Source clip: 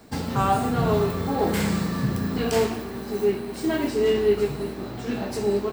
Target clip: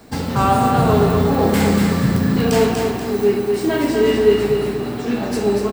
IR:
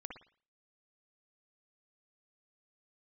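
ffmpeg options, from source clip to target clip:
-filter_complex "[0:a]aecho=1:1:241|482|723|964|1205:0.562|0.219|0.0855|0.0334|0.013,asplit=2[s0][s1];[1:a]atrim=start_sample=2205[s2];[s1][s2]afir=irnorm=-1:irlink=0,volume=1.58[s3];[s0][s3]amix=inputs=2:normalize=0"

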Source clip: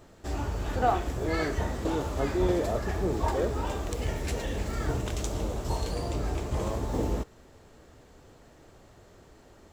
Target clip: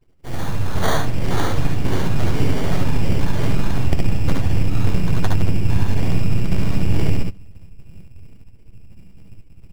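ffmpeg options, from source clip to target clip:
-filter_complex "[0:a]afftdn=nr=34:nf=-41,bandreject=f=98.2:t=h:w=4,bandreject=f=196.4:t=h:w=4,asubboost=boost=11:cutoff=170,acompressor=threshold=0.178:ratio=10,aeval=exprs='abs(val(0))':c=same,crystalizer=i=7.5:c=0,acrusher=samples=17:mix=1:aa=0.000001,asplit=2[s0][s1];[s1]aecho=0:1:61|72:0.473|0.668[s2];[s0][s2]amix=inputs=2:normalize=0,adynamicequalizer=threshold=0.00282:dfrequency=7100:dqfactor=0.7:tfrequency=7100:tqfactor=0.7:attack=5:release=100:ratio=0.375:range=2.5:mode=cutabove:tftype=highshelf,volume=1.26"

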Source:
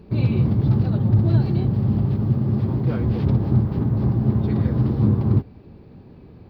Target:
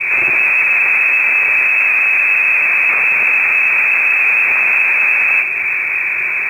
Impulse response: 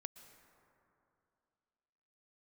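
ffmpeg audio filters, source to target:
-filter_complex "[0:a]adynamicequalizer=threshold=0.00631:dfrequency=890:dqfactor=0.99:tfrequency=890:tqfactor=0.99:attack=5:release=100:ratio=0.375:range=3.5:mode=cutabove:tftype=bell,asplit=2[s0][s1];[s1]highpass=f=720:p=1,volume=251,asoftclip=type=tanh:threshold=0.473[s2];[s0][s2]amix=inputs=2:normalize=0,lowpass=f=1900:p=1,volume=0.501,lowpass=f=2300:t=q:w=0.5098,lowpass=f=2300:t=q:w=0.6013,lowpass=f=2300:t=q:w=0.9,lowpass=f=2300:t=q:w=2.563,afreqshift=-2700,asplit=2[s3][s4];[1:a]atrim=start_sample=2205,asetrate=41895,aresample=44100[s5];[s4][s5]afir=irnorm=-1:irlink=0,volume=1.78[s6];[s3][s6]amix=inputs=2:normalize=0,acrusher=bits=9:mode=log:mix=0:aa=0.000001,volume=0.501"

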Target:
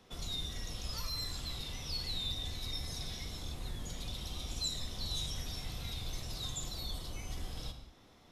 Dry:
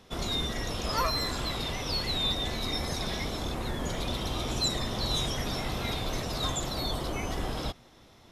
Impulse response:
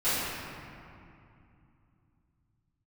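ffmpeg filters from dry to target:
-filter_complex "[0:a]acrossover=split=140|3000[s0][s1][s2];[s1]acompressor=threshold=0.00447:ratio=5[s3];[s0][s3][s2]amix=inputs=3:normalize=0,asplit=2[s4][s5];[1:a]atrim=start_sample=2205,afade=t=out:st=0.25:d=0.01,atrim=end_sample=11466[s6];[s5][s6]afir=irnorm=-1:irlink=0,volume=0.158[s7];[s4][s7]amix=inputs=2:normalize=0,volume=0.447"

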